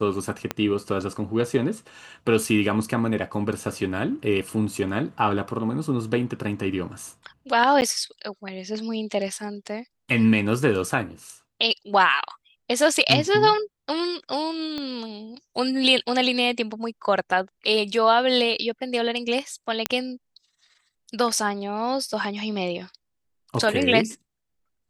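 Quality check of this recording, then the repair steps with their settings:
0.51 pop -10 dBFS
7.81–7.82 gap 9.5 ms
14.78 pop -18 dBFS
19.86 pop -5 dBFS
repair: de-click; interpolate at 7.81, 9.5 ms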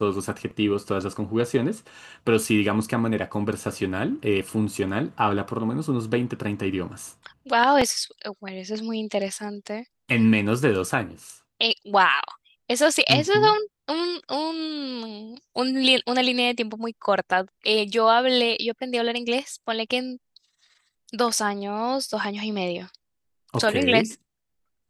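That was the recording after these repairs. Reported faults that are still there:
0.51 pop
14.78 pop

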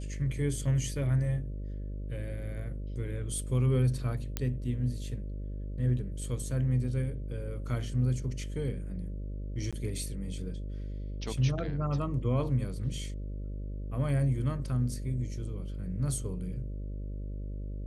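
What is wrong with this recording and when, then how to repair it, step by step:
buzz 50 Hz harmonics 12 -37 dBFS
4.37 pop -15 dBFS
9.71–9.73 gap 16 ms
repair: de-click; de-hum 50 Hz, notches 12; interpolate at 9.71, 16 ms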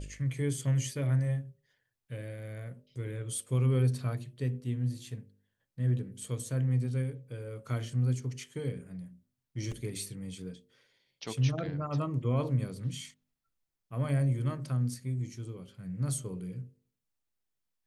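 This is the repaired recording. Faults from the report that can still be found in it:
none

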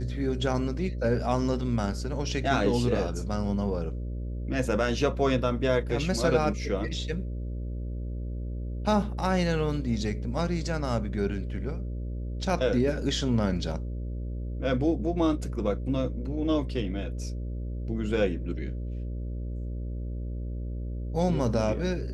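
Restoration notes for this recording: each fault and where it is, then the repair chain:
buzz 60 Hz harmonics 10 -33 dBFS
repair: de-hum 60 Hz, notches 10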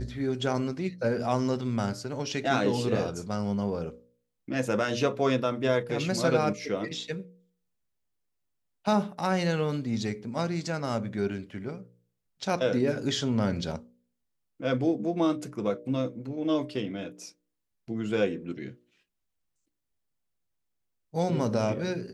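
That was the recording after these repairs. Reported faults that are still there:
none

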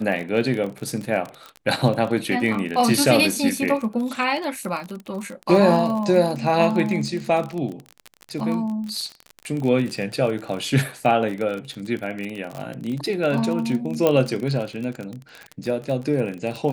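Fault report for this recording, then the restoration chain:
crackle 32/s -26 dBFS
14.07 pop -6 dBFS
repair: de-click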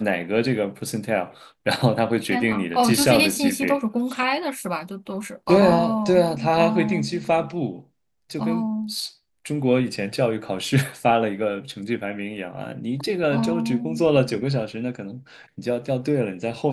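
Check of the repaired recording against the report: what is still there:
none

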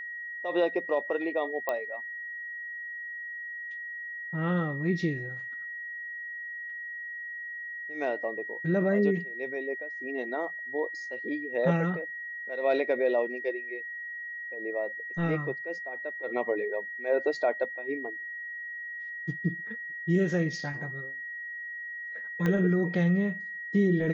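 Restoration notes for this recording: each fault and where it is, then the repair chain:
tone 1900 Hz -36 dBFS
1.69 pop -16 dBFS
22.46 pop -17 dBFS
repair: de-click; notch 1900 Hz, Q 30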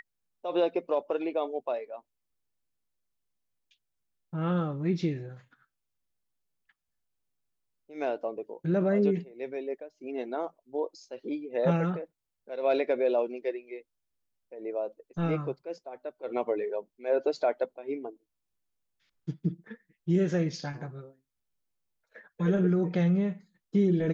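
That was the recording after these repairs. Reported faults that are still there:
22.46 pop

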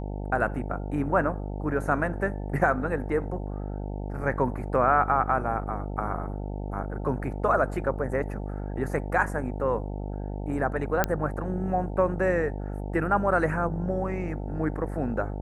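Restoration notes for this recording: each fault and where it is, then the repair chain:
buzz 50 Hz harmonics 18 -33 dBFS
11.04 pop -8 dBFS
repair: de-click; de-hum 50 Hz, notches 18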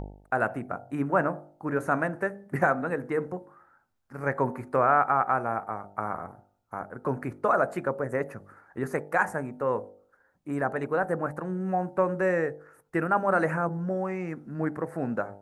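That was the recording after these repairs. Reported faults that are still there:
11.04 pop

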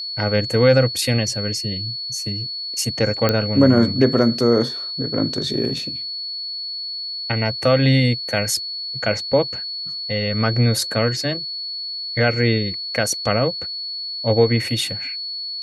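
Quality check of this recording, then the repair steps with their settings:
tone 4400 Hz -26 dBFS
3.29 pop -4 dBFS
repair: de-click; notch 4400 Hz, Q 30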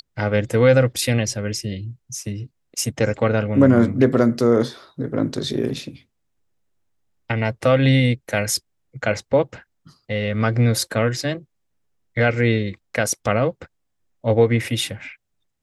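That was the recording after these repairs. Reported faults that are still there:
none

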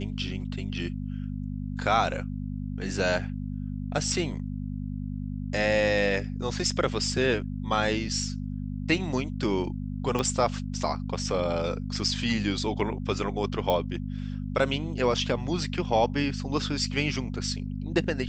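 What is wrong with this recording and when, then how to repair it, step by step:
hum 50 Hz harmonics 5 -33 dBFS
10.19 pop -14 dBFS
13.7 pop -14 dBFS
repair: de-click; de-hum 50 Hz, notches 5

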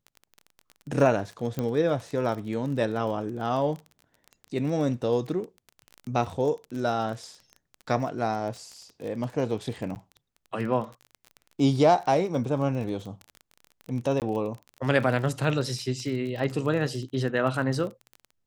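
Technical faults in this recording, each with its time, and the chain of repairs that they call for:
crackle 27/s -33 dBFS
1.59 pop -16 dBFS
9.95–9.96 gap 9.4 ms
14.2–14.22 gap 18 ms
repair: de-click; interpolate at 9.95, 9.4 ms; interpolate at 14.2, 18 ms

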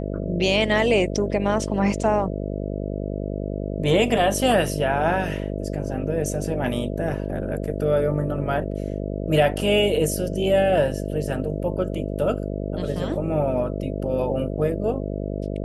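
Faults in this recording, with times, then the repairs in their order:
buzz 50 Hz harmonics 13 -28 dBFS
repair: de-hum 50 Hz, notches 13

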